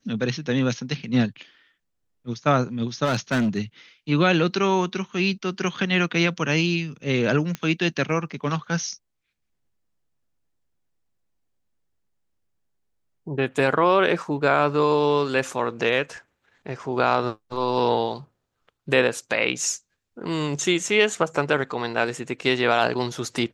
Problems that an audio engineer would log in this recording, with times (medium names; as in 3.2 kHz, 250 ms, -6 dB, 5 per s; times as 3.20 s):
3.04–3.57 s: clipped -18.5 dBFS
7.55 s: pop -14 dBFS